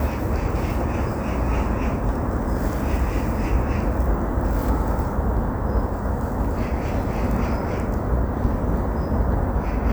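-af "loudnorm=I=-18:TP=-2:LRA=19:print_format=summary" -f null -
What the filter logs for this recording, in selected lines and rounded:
Input Integrated:    -24.1 LUFS
Input True Peak:      -6.8 dBTP
Input LRA:             0.7 LU
Input Threshold:     -34.1 LUFS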